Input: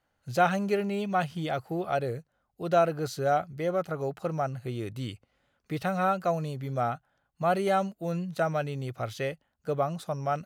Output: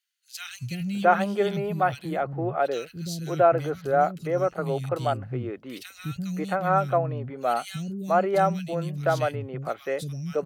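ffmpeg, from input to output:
ffmpeg -i in.wav -filter_complex "[0:a]asettb=1/sr,asplit=3[link_01][link_02][link_03];[link_01]atrim=end=2.164[link_04];[link_02]atrim=start=2.16:end=3.09,asetpts=PTS-STARTPTS,afade=type=in:duration=0.004:curve=qsin,afade=type=out:start_time=0.926:duration=0.004:curve=qsin,equalizer=frequency=11000:width_type=o:width=0.73:gain=-7.5[link_05];[link_03]atrim=start=3.086[link_06];[link_04][link_05]acrossfade=duration=0.004:curve1=hsin:curve2=qsin[link_07];[link_07][link_06]acrossfade=duration=0.004:curve1=qsin:curve2=hsin,acrossover=split=240|2400[link_08][link_09][link_10];[link_08]adelay=340[link_11];[link_09]adelay=670[link_12];[link_11][link_12][link_10]amix=inputs=3:normalize=0,volume=4.5dB" out.wav

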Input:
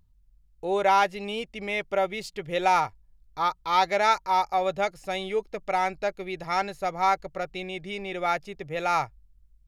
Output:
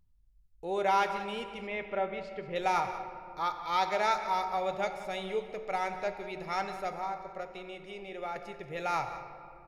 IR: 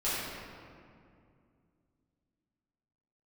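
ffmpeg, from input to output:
-filter_complex "[0:a]asettb=1/sr,asplit=3[link_01][link_02][link_03];[link_01]atrim=end=1.674[link_04];[link_02]atrim=start=1.67:end=2.56,asetpts=PTS-STARTPTS,afade=type=in:duration=0.004:curve=qsin,afade=type=out:start_time=0.886:duration=0.004:curve=qsin,lowpass=2600[link_05];[link_03]atrim=start=2.556[link_06];[link_04][link_05]acrossfade=duration=0.004:curve1=hsin:curve2=qsin[link_07];[link_07][link_06]acrossfade=duration=0.004:curve1=qsin:curve2=hsin,asettb=1/sr,asplit=3[link_08][link_09][link_10];[link_08]atrim=end=6.924[link_11];[link_09]atrim=start=6.92:end=8.36,asetpts=PTS-STARTPTS,afade=type=in:duration=0.004:curve=qsin,afade=type=out:start_time=1.436:duration=0.004:curve=qsin,acrossover=split=82|330|1100[link_12][link_13][link_14][link_15];[link_12]acompressor=threshold=-53dB:ratio=4[link_16];[link_13]acompressor=threshold=-49dB:ratio=4[link_17];[link_14]acompressor=threshold=-29dB:ratio=4[link_18];[link_15]acompressor=threshold=-41dB:ratio=4[link_19];[link_16][link_17][link_18][link_19]amix=inputs=4:normalize=0[link_20];[link_10]atrim=start=8.356[link_21];[link_11][link_20]acrossfade=duration=0.004:curve1=hsin:curve2=qsin[link_22];[link_22][link_21]acrossfade=duration=0.004:curve1=qsin:curve2=hsin,aecho=1:1:182:0.178,asplit=2[link_23][link_24];[1:a]atrim=start_sample=2205[link_25];[link_24][link_25]afir=irnorm=-1:irlink=0,volume=-15dB[link_26];[link_23][link_26]amix=inputs=2:normalize=0,volume=-8dB"

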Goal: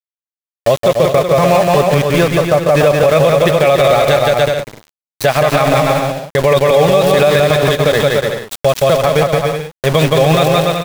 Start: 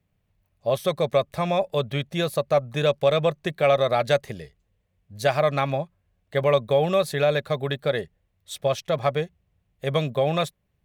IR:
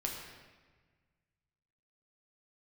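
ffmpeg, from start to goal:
-filter_complex "[0:a]asettb=1/sr,asplit=3[link_01][link_02][link_03];[link_01]atrim=end=0.884[link_04];[link_02]atrim=start=0.88:end=3.18,asetpts=PTS-STARTPTS,afade=type=in:duration=0.004:curve=qsin,afade=type=out:start_time=2.296:duration=0.004:curve=qsin,lowpass=frequency=2700:width=0.5412,lowpass=frequency=2700:width=1.3066[link_05];[link_03]atrim=start=3.176[link_06];[link_04][link_05]acrossfade=duration=0.004:curve1=hsin:curve2=qsin[link_07];[link_07][link_06]acrossfade=duration=0.004:curve1=qsin:curve2=hsin,aeval=exprs='val(0)*gte(abs(val(0)),0.0376)':channel_layout=same,aecho=1:1:170|289|372.3|430.6|471.4:0.631|0.398|0.251|0.158|0.1,alimiter=level_in=16dB:limit=-1dB:release=50:level=0:latency=1,volume=-1dB"

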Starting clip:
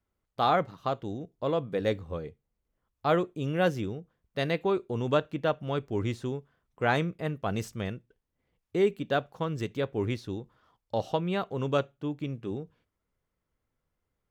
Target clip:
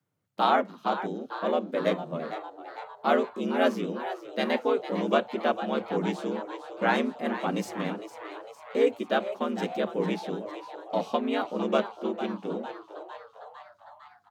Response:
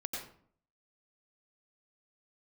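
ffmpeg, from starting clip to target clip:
-filter_complex "[0:a]asplit=2[link_01][link_02];[link_02]asetrate=37084,aresample=44100,atempo=1.18921,volume=-4dB[link_03];[link_01][link_03]amix=inputs=2:normalize=0,asplit=8[link_04][link_05][link_06][link_07][link_08][link_09][link_10][link_11];[link_05]adelay=454,afreqshift=130,volume=-12dB[link_12];[link_06]adelay=908,afreqshift=260,volume=-16.3dB[link_13];[link_07]adelay=1362,afreqshift=390,volume=-20.6dB[link_14];[link_08]adelay=1816,afreqshift=520,volume=-24.9dB[link_15];[link_09]adelay=2270,afreqshift=650,volume=-29.2dB[link_16];[link_10]adelay=2724,afreqshift=780,volume=-33.5dB[link_17];[link_11]adelay=3178,afreqshift=910,volume=-37.8dB[link_18];[link_04][link_12][link_13][link_14][link_15][link_16][link_17][link_18]amix=inputs=8:normalize=0,afreqshift=84"

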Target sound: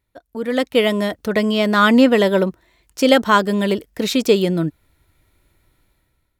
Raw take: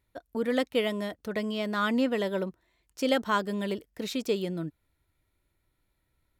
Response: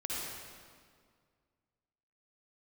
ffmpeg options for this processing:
-af "dynaudnorm=framelen=180:gausssize=7:maxgain=14dB,volume=1dB"

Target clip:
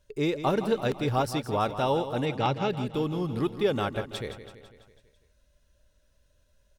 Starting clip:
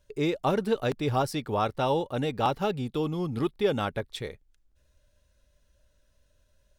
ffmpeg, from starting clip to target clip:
ffmpeg -i in.wav -filter_complex "[0:a]asplit=3[link_01][link_02][link_03];[link_01]afade=type=out:start_time=2.25:duration=0.02[link_04];[link_02]highpass=100,equalizer=frequency=130:width_type=q:width=4:gain=8,equalizer=frequency=680:width_type=q:width=4:gain=-3,equalizer=frequency=1100:width_type=q:width=4:gain=-4,equalizer=frequency=2200:width_type=q:width=4:gain=7,lowpass=frequency=6900:width=0.5412,lowpass=frequency=6900:width=1.3066,afade=type=in:start_time=2.25:duration=0.02,afade=type=out:start_time=2.69:duration=0.02[link_05];[link_03]afade=type=in:start_time=2.69:duration=0.02[link_06];[link_04][link_05][link_06]amix=inputs=3:normalize=0,aecho=1:1:166|332|498|664|830|996:0.266|0.152|0.0864|0.0493|0.0281|0.016" out.wav

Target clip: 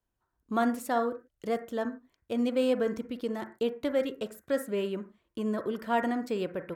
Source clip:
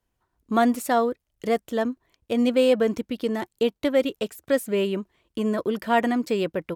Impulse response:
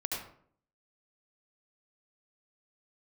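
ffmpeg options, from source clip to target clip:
-filter_complex "[0:a]asplit=2[link_01][link_02];[link_02]highshelf=frequency=2400:width_type=q:width=3:gain=-13[link_03];[1:a]atrim=start_sample=2205,afade=type=out:start_time=0.35:duration=0.01,atrim=end_sample=15876,asetrate=83790,aresample=44100[link_04];[link_03][link_04]afir=irnorm=-1:irlink=0,volume=-6dB[link_05];[link_01][link_05]amix=inputs=2:normalize=0,volume=-9dB"

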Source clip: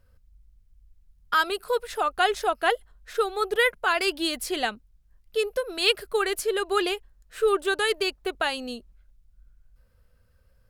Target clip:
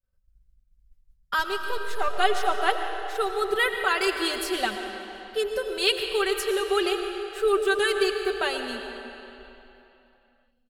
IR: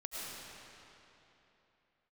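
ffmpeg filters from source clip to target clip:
-filter_complex "[0:a]asettb=1/sr,asplit=3[link_01][link_02][link_03];[link_01]atrim=end=1.394[link_04];[link_02]atrim=start=1.39:end=2.08,asetpts=PTS-STARTPTS,afade=type=in:duration=0.004:curve=qsin,afade=type=out:start_time=0.686:duration=0.004:curve=qsin,aeval=exprs='if(lt(val(0),0),0.447*val(0),val(0))':channel_layout=same[link_05];[link_03]atrim=start=2.076[link_06];[link_04][link_05]acrossfade=duration=0.004:curve1=hsin:curve2=qsin[link_07];[link_07][link_06]acrossfade=duration=0.004:curve1=qsin:curve2=hsin,aecho=1:1:5.2:0.61,agate=range=-33dB:threshold=-45dB:ratio=3:detection=peak,aecho=1:1:147|294|441|588|735:0.1|0.057|0.0325|0.0185|0.0106,asplit=2[link_08][link_09];[1:a]atrim=start_sample=2205[link_10];[link_09][link_10]afir=irnorm=-1:irlink=0,volume=-3dB[link_11];[link_08][link_11]amix=inputs=2:normalize=0,volume=-5dB"

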